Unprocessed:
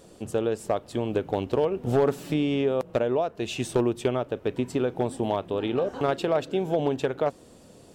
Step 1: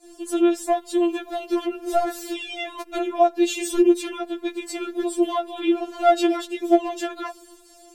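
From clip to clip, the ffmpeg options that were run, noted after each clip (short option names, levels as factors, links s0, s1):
-af "highshelf=f=4600:g=7.5,agate=range=0.0224:threshold=0.00447:ratio=3:detection=peak,afftfilt=real='re*4*eq(mod(b,16),0)':imag='im*4*eq(mod(b,16),0)':win_size=2048:overlap=0.75,volume=2"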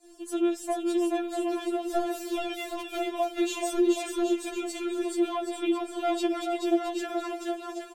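-filter_complex "[0:a]acrossover=split=340|3000[s0][s1][s2];[s1]acompressor=threshold=0.1:ratio=6[s3];[s0][s3][s2]amix=inputs=3:normalize=0,asplit=2[s4][s5];[s5]aecho=0:1:430|774|1049|1269|1445:0.631|0.398|0.251|0.158|0.1[s6];[s4][s6]amix=inputs=2:normalize=0,volume=0.473"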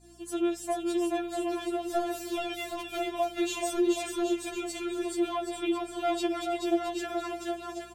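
-af "lowshelf=f=260:g=-7,aeval=exprs='val(0)+0.00112*(sin(2*PI*60*n/s)+sin(2*PI*2*60*n/s)/2+sin(2*PI*3*60*n/s)/3+sin(2*PI*4*60*n/s)/4+sin(2*PI*5*60*n/s)/5)':c=same"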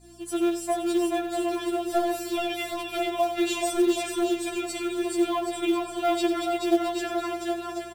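-filter_complex "[0:a]bandreject=f=6500:w=11,aecho=1:1:91:0.282,asplit=2[s0][s1];[s1]acrusher=bits=4:mode=log:mix=0:aa=0.000001,volume=0.631[s2];[s0][s2]amix=inputs=2:normalize=0"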